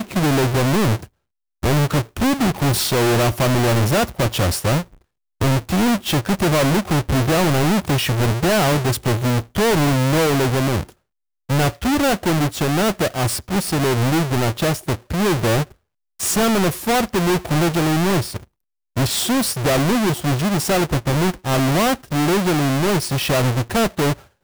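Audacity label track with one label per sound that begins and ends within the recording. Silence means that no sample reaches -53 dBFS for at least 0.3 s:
1.620000	5.020000	sound
5.400000	10.940000	sound
11.490000	15.750000	sound
16.190000	18.450000	sound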